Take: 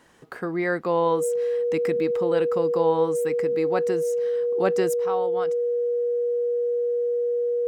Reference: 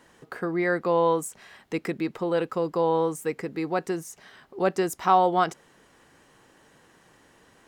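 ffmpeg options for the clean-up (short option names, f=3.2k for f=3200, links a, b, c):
-af "bandreject=f=480:w=30,asetnsamples=n=441:p=0,asendcmd='4.94 volume volume 11dB',volume=0dB"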